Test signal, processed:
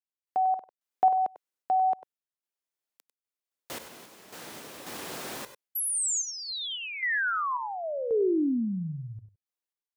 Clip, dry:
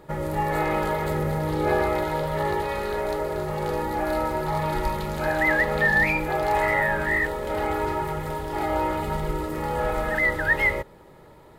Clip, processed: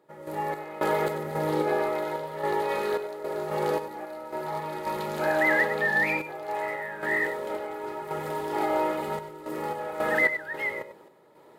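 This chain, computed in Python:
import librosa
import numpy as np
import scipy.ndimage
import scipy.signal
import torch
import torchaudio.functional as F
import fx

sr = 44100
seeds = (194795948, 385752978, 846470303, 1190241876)

p1 = scipy.signal.sosfilt(scipy.signal.butter(2, 230.0, 'highpass', fs=sr, output='sos'), x)
p2 = fx.peak_eq(p1, sr, hz=430.0, db=2.5, octaves=1.8)
p3 = fx.tremolo_random(p2, sr, seeds[0], hz=3.7, depth_pct=85)
y = p3 + fx.echo_multitap(p3, sr, ms=(96, 98), db=(-15.5, -13.5), dry=0)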